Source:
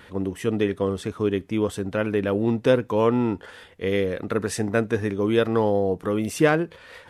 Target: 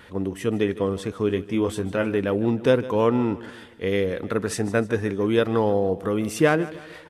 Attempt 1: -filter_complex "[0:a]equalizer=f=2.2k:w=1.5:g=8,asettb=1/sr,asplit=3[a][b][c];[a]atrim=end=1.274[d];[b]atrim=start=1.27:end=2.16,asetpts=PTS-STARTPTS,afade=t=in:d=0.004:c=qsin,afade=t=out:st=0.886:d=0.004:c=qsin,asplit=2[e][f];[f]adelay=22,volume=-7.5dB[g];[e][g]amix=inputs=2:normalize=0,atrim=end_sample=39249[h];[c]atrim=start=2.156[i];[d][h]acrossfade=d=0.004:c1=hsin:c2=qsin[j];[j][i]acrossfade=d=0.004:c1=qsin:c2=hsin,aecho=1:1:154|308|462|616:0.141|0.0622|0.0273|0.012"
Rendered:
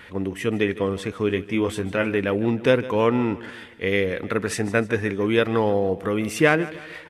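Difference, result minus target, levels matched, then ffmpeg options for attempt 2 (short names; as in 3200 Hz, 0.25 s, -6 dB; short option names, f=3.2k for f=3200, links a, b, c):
2000 Hz band +4.5 dB
-filter_complex "[0:a]asettb=1/sr,asplit=3[a][b][c];[a]atrim=end=1.274[d];[b]atrim=start=1.27:end=2.16,asetpts=PTS-STARTPTS,afade=t=in:d=0.004:c=qsin,afade=t=out:st=0.886:d=0.004:c=qsin,asplit=2[e][f];[f]adelay=22,volume=-7.5dB[g];[e][g]amix=inputs=2:normalize=0,atrim=end_sample=39249[h];[c]atrim=start=2.156[i];[d][h]acrossfade=d=0.004:c1=hsin:c2=qsin[j];[j][i]acrossfade=d=0.004:c1=qsin:c2=hsin,aecho=1:1:154|308|462|616:0.141|0.0622|0.0273|0.012"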